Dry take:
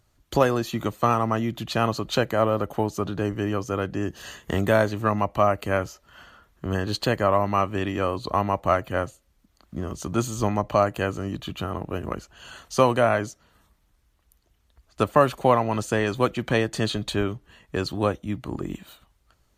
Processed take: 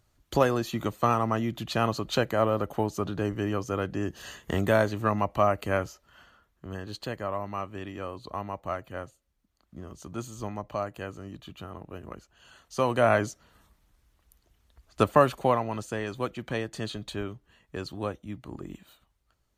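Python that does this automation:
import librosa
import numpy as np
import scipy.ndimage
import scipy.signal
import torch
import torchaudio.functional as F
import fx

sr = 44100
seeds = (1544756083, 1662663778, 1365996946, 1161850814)

y = fx.gain(x, sr, db=fx.line((5.79, -3.0), (6.65, -11.5), (12.66, -11.5), (13.12, 0.0), (15.01, 0.0), (15.89, -9.0)))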